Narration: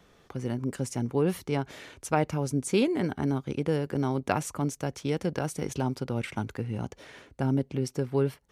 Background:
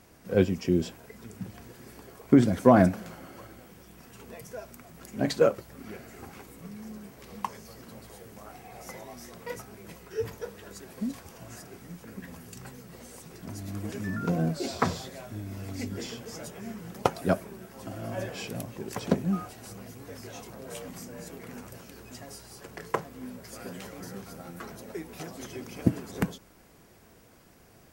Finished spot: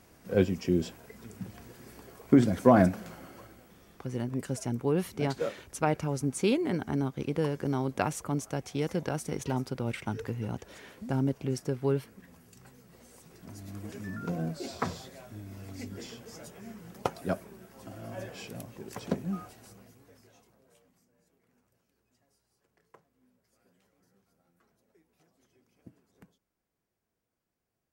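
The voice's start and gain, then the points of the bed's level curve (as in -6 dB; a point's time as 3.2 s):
3.70 s, -2.0 dB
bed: 3.24 s -2 dB
4.14 s -11 dB
12.49 s -11 dB
13.68 s -6 dB
19.49 s -6 dB
21.05 s -29 dB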